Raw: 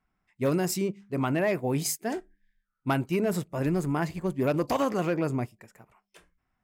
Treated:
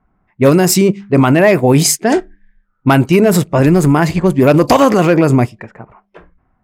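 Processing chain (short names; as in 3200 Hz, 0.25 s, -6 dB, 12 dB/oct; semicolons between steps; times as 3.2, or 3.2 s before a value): low-pass opened by the level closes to 1100 Hz, open at -24 dBFS; AGC gain up to 3 dB; maximiser +18.5 dB; gain -1 dB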